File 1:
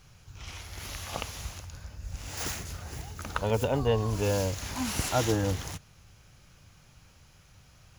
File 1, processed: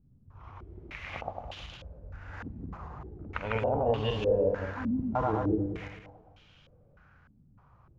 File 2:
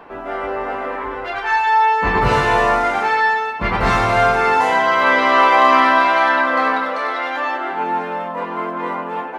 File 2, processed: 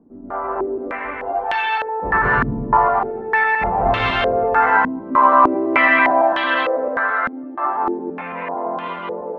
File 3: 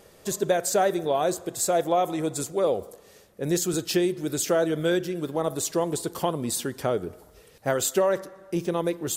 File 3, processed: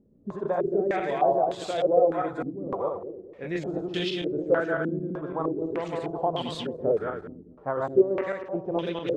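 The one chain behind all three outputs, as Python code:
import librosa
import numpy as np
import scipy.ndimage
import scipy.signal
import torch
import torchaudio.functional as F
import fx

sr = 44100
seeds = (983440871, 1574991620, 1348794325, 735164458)

y = fx.reverse_delay_fb(x, sr, ms=111, feedback_pct=57, wet_db=-0.5)
y = fx.filter_held_lowpass(y, sr, hz=3.3, low_hz=250.0, high_hz=3200.0)
y = F.gain(torch.from_numpy(y), -8.0).numpy()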